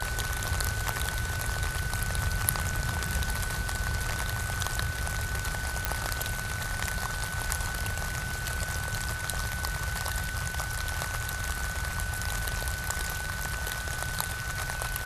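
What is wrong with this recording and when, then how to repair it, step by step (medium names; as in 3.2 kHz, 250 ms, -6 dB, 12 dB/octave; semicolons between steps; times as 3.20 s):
whine 1.5 kHz -36 dBFS
5.85 s: pop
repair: de-click; band-stop 1.5 kHz, Q 30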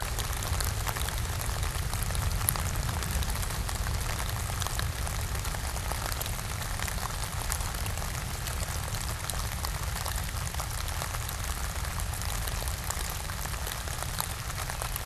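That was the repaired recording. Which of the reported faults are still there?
nothing left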